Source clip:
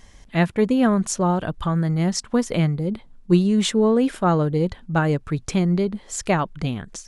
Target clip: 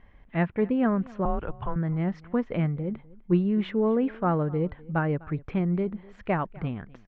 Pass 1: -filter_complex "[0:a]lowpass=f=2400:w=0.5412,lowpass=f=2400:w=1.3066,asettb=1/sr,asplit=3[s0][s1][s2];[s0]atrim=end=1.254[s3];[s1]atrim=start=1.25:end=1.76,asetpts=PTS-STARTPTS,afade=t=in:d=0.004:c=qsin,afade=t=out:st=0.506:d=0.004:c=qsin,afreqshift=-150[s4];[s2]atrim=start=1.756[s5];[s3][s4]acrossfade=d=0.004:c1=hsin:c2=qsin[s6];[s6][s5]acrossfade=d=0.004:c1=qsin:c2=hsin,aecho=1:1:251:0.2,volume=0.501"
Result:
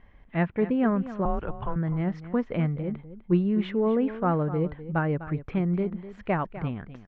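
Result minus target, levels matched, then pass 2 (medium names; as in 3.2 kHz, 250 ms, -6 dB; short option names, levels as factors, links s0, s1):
echo-to-direct +8.5 dB
-filter_complex "[0:a]lowpass=f=2400:w=0.5412,lowpass=f=2400:w=1.3066,asettb=1/sr,asplit=3[s0][s1][s2];[s0]atrim=end=1.254[s3];[s1]atrim=start=1.25:end=1.76,asetpts=PTS-STARTPTS,afade=t=in:d=0.004:c=qsin,afade=t=out:st=0.506:d=0.004:c=qsin,afreqshift=-150[s4];[s2]atrim=start=1.756[s5];[s3][s4]acrossfade=d=0.004:c1=hsin:c2=qsin[s6];[s6][s5]acrossfade=d=0.004:c1=qsin:c2=hsin,aecho=1:1:251:0.075,volume=0.501"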